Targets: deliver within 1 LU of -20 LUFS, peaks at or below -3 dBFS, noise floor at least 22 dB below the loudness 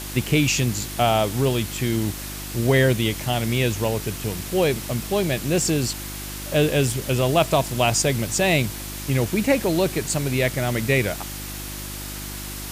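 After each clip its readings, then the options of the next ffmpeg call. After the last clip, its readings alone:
hum 50 Hz; harmonics up to 350 Hz; hum level -33 dBFS; noise floor -33 dBFS; noise floor target -45 dBFS; loudness -22.5 LUFS; peak -5.5 dBFS; loudness target -20.0 LUFS
-> -af "bandreject=f=50:t=h:w=4,bandreject=f=100:t=h:w=4,bandreject=f=150:t=h:w=4,bandreject=f=200:t=h:w=4,bandreject=f=250:t=h:w=4,bandreject=f=300:t=h:w=4,bandreject=f=350:t=h:w=4"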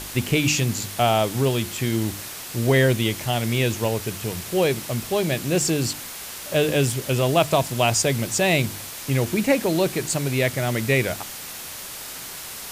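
hum none; noise floor -36 dBFS; noise floor target -45 dBFS
-> -af "afftdn=nr=9:nf=-36"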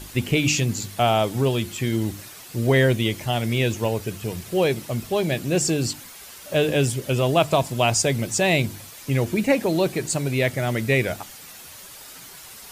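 noise floor -42 dBFS; noise floor target -45 dBFS
-> -af "afftdn=nr=6:nf=-42"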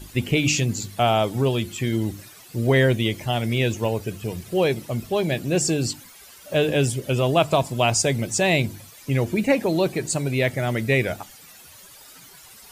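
noise floor -47 dBFS; loudness -22.5 LUFS; peak -6.0 dBFS; loudness target -20.0 LUFS
-> -af "volume=2.5dB"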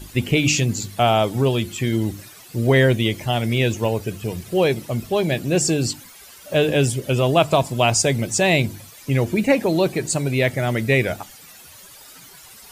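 loudness -20.0 LUFS; peak -3.5 dBFS; noise floor -44 dBFS

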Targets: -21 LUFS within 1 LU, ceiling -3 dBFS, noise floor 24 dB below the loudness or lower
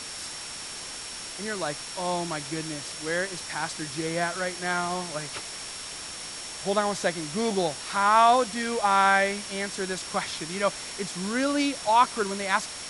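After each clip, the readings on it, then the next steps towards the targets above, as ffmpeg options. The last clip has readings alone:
steady tone 5500 Hz; tone level -42 dBFS; noise floor -38 dBFS; noise floor target -51 dBFS; loudness -27.0 LUFS; peak -8.0 dBFS; loudness target -21.0 LUFS
-> -af "bandreject=f=5.5k:w=30"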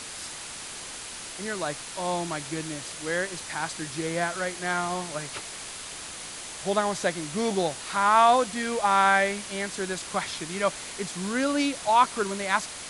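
steady tone none; noise floor -39 dBFS; noise floor target -51 dBFS
-> -af "afftdn=nr=12:nf=-39"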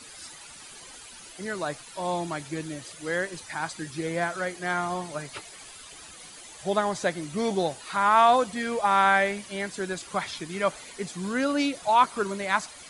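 noise floor -46 dBFS; noise floor target -51 dBFS
-> -af "afftdn=nr=6:nf=-46"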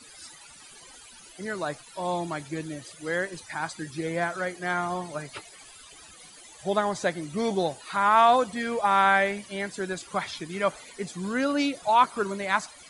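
noise floor -49 dBFS; noise floor target -51 dBFS
-> -af "afftdn=nr=6:nf=-49"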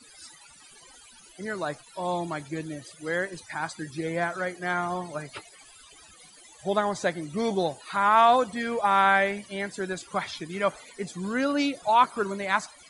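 noise floor -52 dBFS; loudness -27.0 LUFS; peak -8.0 dBFS; loudness target -21.0 LUFS
-> -af "volume=6dB,alimiter=limit=-3dB:level=0:latency=1"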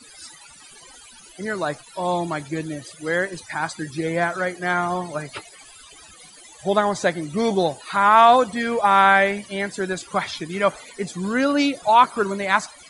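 loudness -21.0 LUFS; peak -3.0 dBFS; noise floor -46 dBFS

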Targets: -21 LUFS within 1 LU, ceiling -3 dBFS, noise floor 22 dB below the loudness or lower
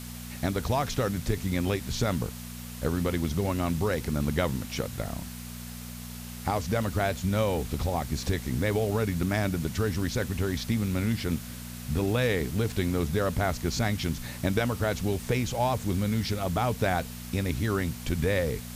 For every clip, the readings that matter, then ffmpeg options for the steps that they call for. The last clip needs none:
hum 60 Hz; harmonics up to 240 Hz; hum level -38 dBFS; noise floor -40 dBFS; noise floor target -51 dBFS; loudness -29.0 LUFS; peak -10.0 dBFS; loudness target -21.0 LUFS
-> -af "bandreject=f=60:t=h:w=4,bandreject=f=120:t=h:w=4,bandreject=f=180:t=h:w=4,bandreject=f=240:t=h:w=4"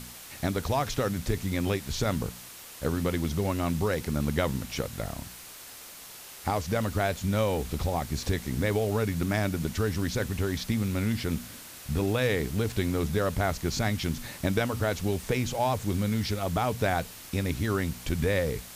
hum none; noise floor -46 dBFS; noise floor target -52 dBFS
-> -af "afftdn=nr=6:nf=-46"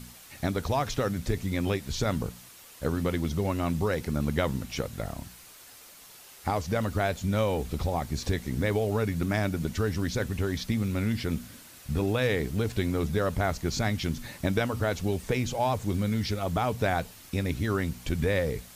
noise floor -50 dBFS; noise floor target -52 dBFS
-> -af "afftdn=nr=6:nf=-50"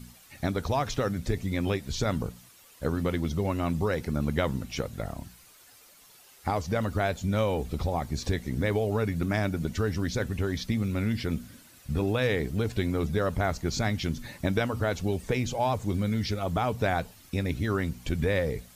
noise floor -55 dBFS; loudness -29.5 LUFS; peak -10.0 dBFS; loudness target -21.0 LUFS
-> -af "volume=8.5dB,alimiter=limit=-3dB:level=0:latency=1"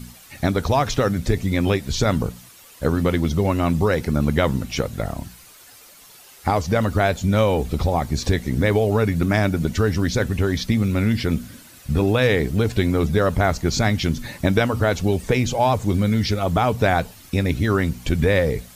loudness -21.0 LUFS; peak -3.0 dBFS; noise floor -47 dBFS

